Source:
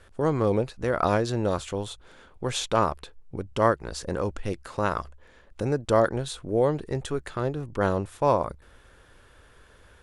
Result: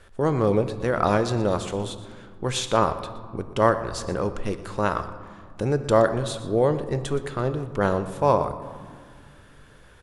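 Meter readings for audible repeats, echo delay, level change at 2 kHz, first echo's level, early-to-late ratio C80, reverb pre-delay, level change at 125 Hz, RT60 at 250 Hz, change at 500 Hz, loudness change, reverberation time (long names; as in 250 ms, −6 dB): 1, 120 ms, +2.5 dB, −16.5 dB, 12.5 dB, 5 ms, +3.0 dB, 3.0 s, +2.5 dB, +2.5 dB, 2.0 s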